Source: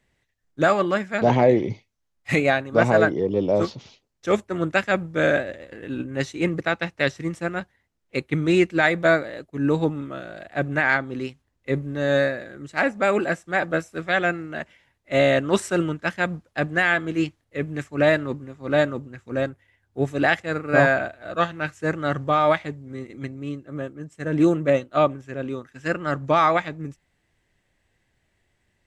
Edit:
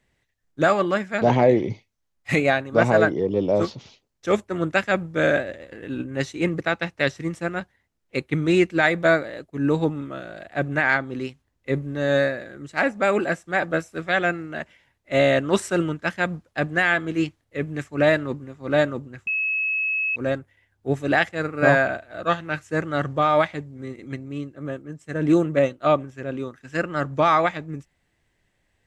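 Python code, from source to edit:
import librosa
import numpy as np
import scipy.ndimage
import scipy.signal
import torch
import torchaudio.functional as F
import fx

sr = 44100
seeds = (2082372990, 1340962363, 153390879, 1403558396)

y = fx.edit(x, sr, fx.insert_tone(at_s=19.27, length_s=0.89, hz=2580.0, db=-21.0), tone=tone)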